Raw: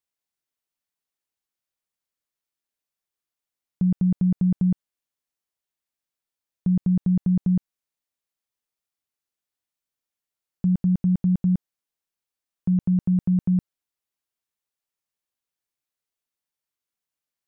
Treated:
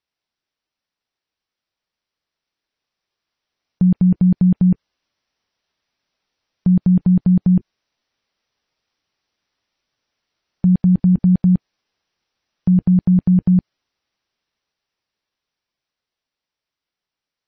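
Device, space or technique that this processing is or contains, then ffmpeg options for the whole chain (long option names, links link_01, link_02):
low-bitrate web radio: -af "dynaudnorm=framelen=410:gausssize=17:maxgain=9dB,alimiter=limit=-15dB:level=0:latency=1:release=60,volume=7dB" -ar 24000 -c:a libmp3lame -b:a 24k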